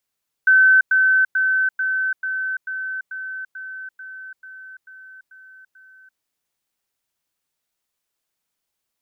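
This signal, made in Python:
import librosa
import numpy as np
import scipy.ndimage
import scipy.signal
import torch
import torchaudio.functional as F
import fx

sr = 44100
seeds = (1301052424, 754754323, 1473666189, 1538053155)

y = fx.level_ladder(sr, hz=1530.0, from_db=-9.5, step_db=-3.0, steps=13, dwell_s=0.34, gap_s=0.1)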